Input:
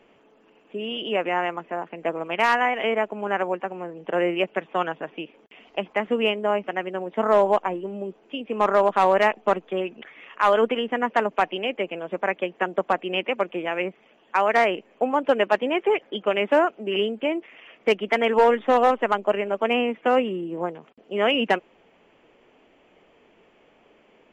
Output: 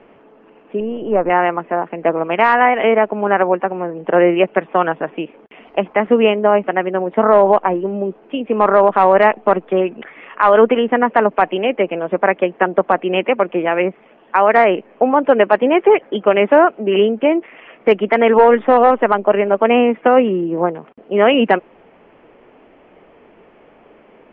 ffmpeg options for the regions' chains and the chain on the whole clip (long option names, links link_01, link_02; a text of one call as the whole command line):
ffmpeg -i in.wav -filter_complex "[0:a]asettb=1/sr,asplit=3[link_01][link_02][link_03];[link_01]atrim=end=0.804[link_04];[link_02]atrim=start=0.8:end=1.3,asetpts=PTS-STARTPTS,afade=type=in:duration=0.004:curve=qsin,afade=type=out:start_time=0.496:duration=0.004:curve=qsin,aeval=exprs='if(lt(val(0),0),0.708*val(0),val(0))':channel_layout=same,lowpass=1100[link_05];[link_03]atrim=start=1.296[link_06];[link_04][link_05]acrossfade=duration=0.004:curve1=hsin:curve2=qsin[link_07];[link_07][link_06]acrossfade=duration=0.004:curve1=qsin:curve2=hsin,lowpass=1900,alimiter=level_in=12dB:limit=-1dB:release=50:level=0:latency=1,volume=-1dB" out.wav